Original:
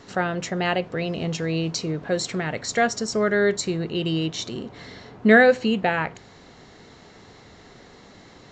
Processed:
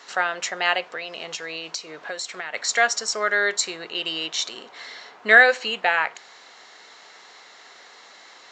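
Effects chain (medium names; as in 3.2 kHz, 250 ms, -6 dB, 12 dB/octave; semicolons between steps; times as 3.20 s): high-pass 910 Hz 12 dB/octave; 0.94–2.54 s: compression 6:1, threshold -34 dBFS, peak gain reduction 10 dB; trim +5.5 dB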